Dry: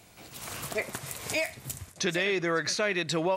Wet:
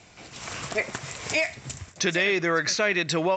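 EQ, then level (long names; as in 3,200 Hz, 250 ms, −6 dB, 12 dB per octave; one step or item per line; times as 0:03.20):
Chebyshev low-pass with heavy ripple 7,600 Hz, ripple 3 dB
+6.0 dB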